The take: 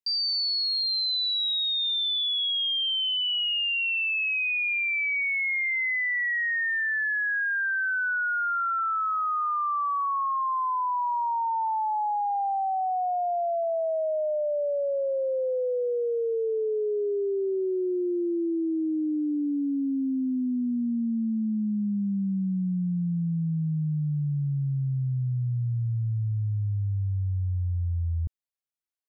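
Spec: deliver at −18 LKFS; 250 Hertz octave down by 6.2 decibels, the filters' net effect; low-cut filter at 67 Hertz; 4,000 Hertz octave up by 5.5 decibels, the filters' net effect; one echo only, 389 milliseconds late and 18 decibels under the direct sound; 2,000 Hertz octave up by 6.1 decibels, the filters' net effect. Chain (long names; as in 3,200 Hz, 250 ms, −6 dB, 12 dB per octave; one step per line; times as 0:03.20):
high-pass filter 67 Hz
parametric band 250 Hz −9 dB
parametric band 2,000 Hz +6.5 dB
parametric band 4,000 Hz +4.5 dB
single-tap delay 389 ms −18 dB
level +4 dB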